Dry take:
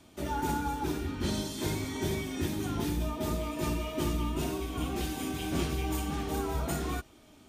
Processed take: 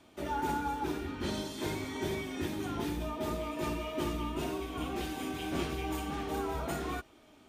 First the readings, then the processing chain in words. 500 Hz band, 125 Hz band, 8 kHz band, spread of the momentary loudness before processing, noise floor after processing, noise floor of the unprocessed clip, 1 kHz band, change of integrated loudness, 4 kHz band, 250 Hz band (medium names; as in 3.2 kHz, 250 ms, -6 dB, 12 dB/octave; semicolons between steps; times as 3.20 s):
-1.0 dB, -6.5 dB, -6.5 dB, 3 LU, -60 dBFS, -57 dBFS, 0.0 dB, -2.5 dB, -2.5 dB, -3.0 dB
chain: tone controls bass -7 dB, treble -7 dB